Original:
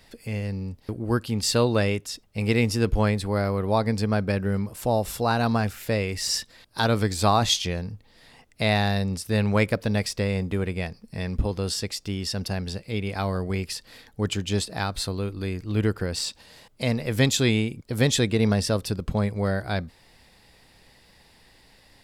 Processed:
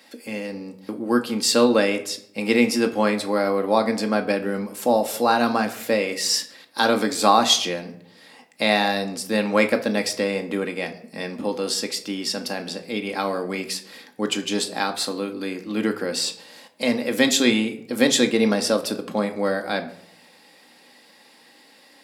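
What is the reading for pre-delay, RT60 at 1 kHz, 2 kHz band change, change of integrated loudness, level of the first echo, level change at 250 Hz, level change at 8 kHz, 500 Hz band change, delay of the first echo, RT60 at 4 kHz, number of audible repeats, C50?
4 ms, 0.60 s, +5.0 dB, +3.0 dB, no echo audible, +3.5 dB, +4.5 dB, +4.5 dB, no echo audible, 0.40 s, no echo audible, 13.5 dB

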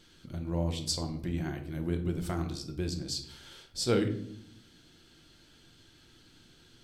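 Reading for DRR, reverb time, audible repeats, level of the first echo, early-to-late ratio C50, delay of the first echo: 4.0 dB, 0.65 s, no echo audible, no echo audible, 10.5 dB, no echo audible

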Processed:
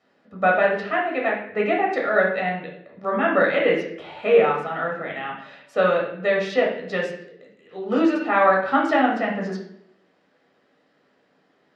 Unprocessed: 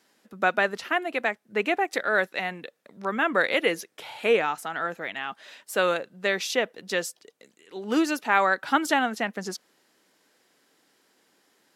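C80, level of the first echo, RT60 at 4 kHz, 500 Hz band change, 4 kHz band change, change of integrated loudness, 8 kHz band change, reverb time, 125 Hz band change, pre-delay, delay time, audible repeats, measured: 8.5 dB, no echo audible, 0.55 s, +7.0 dB, −3.5 dB, +4.5 dB, below −15 dB, 0.70 s, +8.5 dB, 12 ms, no echo audible, no echo audible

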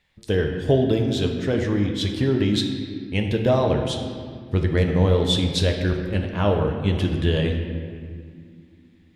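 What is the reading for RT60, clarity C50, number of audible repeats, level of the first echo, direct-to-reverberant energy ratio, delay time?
2.1 s, 5.0 dB, no echo audible, no echo audible, 2.5 dB, no echo audible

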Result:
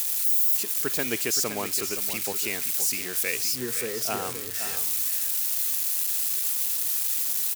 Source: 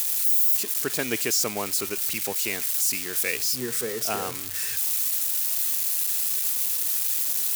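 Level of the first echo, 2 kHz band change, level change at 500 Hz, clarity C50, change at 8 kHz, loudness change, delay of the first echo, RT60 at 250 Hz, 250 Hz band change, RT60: −10.0 dB, −1.0 dB, −1.0 dB, no reverb audible, −1.0 dB, −1.0 dB, 520 ms, no reverb audible, −1.0 dB, no reverb audible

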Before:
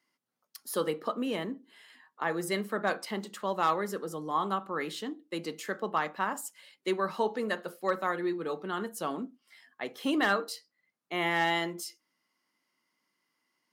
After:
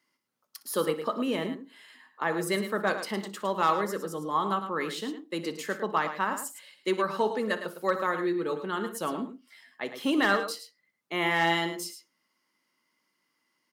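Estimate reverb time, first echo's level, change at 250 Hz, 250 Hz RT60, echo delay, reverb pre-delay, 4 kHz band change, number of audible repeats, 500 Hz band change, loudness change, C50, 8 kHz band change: no reverb audible, −16.5 dB, +3.0 dB, no reverb audible, 60 ms, no reverb audible, +3.0 dB, 2, +3.0 dB, +3.0 dB, no reverb audible, +3.0 dB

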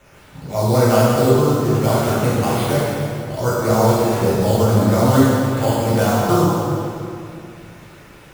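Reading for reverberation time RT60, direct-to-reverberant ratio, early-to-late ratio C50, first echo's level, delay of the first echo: 2.6 s, −10.0 dB, −4.0 dB, no echo audible, no echo audible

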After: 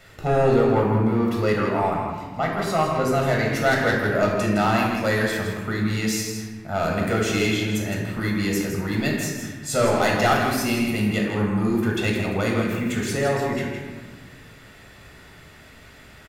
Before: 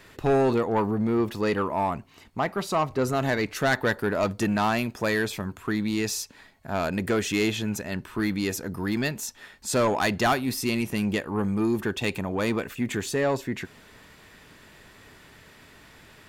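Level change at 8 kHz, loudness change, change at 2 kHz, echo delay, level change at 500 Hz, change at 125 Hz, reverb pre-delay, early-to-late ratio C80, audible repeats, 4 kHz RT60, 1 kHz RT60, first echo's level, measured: +2.5 dB, +4.0 dB, +4.5 dB, 162 ms, +4.0 dB, +6.5 dB, 13 ms, 2.5 dB, 1, 0.90 s, 1.4 s, −8.0 dB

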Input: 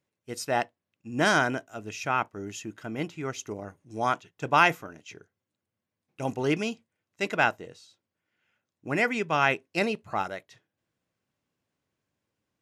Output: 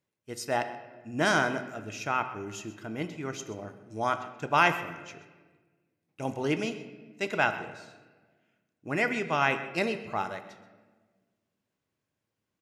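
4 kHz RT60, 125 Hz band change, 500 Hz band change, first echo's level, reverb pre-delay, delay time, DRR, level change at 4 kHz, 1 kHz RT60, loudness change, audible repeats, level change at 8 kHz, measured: 0.95 s, −2.0 dB, −1.5 dB, −16.5 dB, 3 ms, 129 ms, 8.5 dB, −2.0 dB, 1.2 s, −2.0 dB, 1, −2.0 dB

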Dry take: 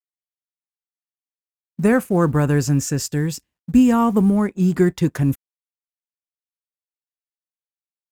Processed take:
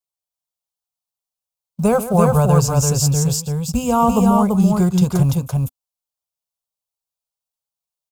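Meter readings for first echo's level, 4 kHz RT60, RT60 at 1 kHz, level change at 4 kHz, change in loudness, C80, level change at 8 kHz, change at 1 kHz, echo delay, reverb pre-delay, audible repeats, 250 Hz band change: −13.5 dB, no reverb audible, no reverb audible, +6.5 dB, +2.0 dB, no reverb audible, +7.5 dB, +7.0 dB, 142 ms, no reverb audible, 2, 0.0 dB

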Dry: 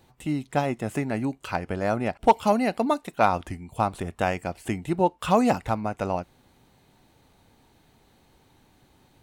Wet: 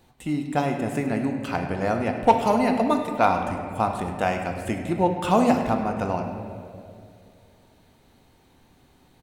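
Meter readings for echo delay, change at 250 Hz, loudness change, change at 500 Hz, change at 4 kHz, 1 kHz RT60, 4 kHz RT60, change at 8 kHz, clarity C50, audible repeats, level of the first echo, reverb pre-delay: 102 ms, +3.0 dB, +2.0 dB, +1.5 dB, +1.0 dB, 2.0 s, 1.4 s, +0.5 dB, 5.0 dB, 1, −14.5 dB, 3 ms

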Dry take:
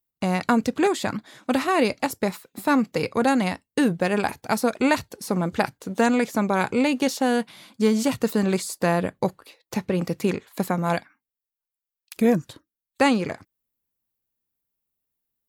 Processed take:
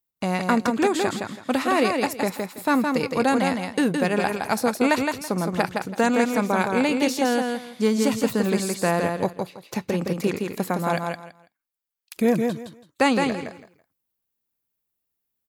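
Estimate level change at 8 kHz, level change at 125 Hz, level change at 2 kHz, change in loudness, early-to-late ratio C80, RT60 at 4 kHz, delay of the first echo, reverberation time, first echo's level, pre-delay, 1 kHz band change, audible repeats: +1.5 dB, −1.0 dB, +1.5 dB, +0.5 dB, no reverb audible, no reverb audible, 165 ms, no reverb audible, −4.5 dB, no reverb audible, +1.0 dB, 3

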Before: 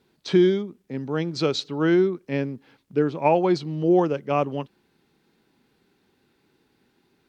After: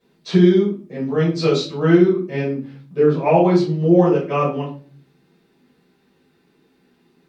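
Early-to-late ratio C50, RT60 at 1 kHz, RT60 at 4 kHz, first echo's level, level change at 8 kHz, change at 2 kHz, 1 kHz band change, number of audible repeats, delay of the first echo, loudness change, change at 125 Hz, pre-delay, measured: 7.0 dB, 0.35 s, 0.30 s, no echo audible, can't be measured, +3.5 dB, +3.5 dB, no echo audible, no echo audible, +6.0 dB, +9.0 dB, 5 ms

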